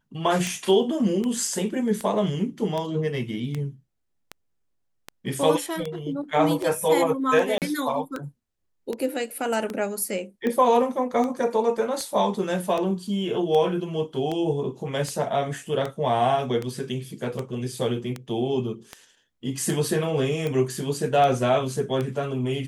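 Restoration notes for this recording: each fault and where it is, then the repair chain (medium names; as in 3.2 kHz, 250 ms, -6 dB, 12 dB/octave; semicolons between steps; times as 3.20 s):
tick 78 rpm
7.58–7.62 s: dropout 38 ms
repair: de-click; interpolate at 7.58 s, 38 ms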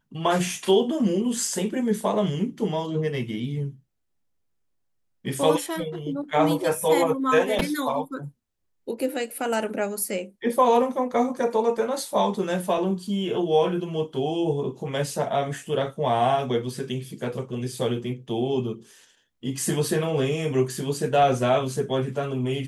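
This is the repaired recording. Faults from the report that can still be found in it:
nothing left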